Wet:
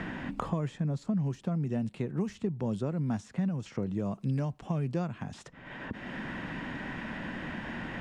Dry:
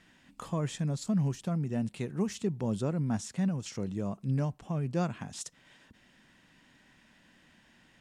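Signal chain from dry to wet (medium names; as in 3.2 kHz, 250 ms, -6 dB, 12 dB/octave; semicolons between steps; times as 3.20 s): low-pass 1.4 kHz 6 dB/octave, from 2.27 s 2.6 kHz; three bands compressed up and down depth 100%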